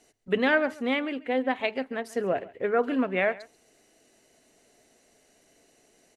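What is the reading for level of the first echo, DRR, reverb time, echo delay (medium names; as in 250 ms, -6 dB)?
-20.5 dB, no reverb, no reverb, 137 ms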